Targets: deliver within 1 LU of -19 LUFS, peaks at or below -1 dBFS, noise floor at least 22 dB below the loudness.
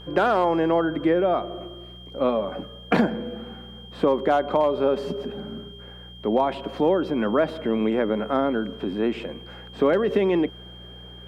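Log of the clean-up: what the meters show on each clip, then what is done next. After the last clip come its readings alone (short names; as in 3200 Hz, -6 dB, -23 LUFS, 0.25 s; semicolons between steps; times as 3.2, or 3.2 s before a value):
hum 60 Hz; harmonics up to 180 Hz; hum level -43 dBFS; steady tone 3200 Hz; tone level -44 dBFS; loudness -23.5 LUFS; peak -8.0 dBFS; loudness target -19.0 LUFS
-> de-hum 60 Hz, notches 3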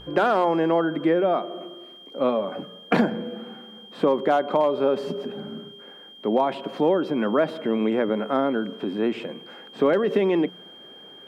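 hum none; steady tone 3200 Hz; tone level -44 dBFS
-> notch 3200 Hz, Q 30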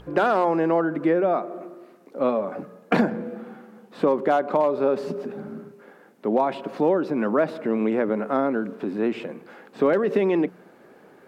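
steady tone none; loudness -23.5 LUFS; peak -8.5 dBFS; loudness target -19.0 LUFS
-> gain +4.5 dB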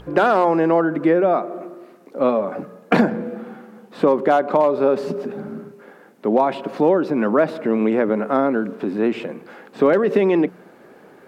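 loudness -19.0 LUFS; peak -4.0 dBFS; noise floor -48 dBFS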